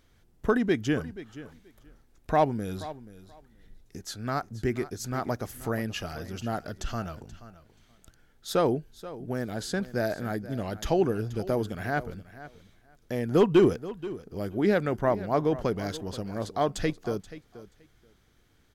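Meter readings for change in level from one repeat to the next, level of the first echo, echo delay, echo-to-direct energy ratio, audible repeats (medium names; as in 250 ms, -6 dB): -16.0 dB, -16.0 dB, 480 ms, -16.0 dB, 2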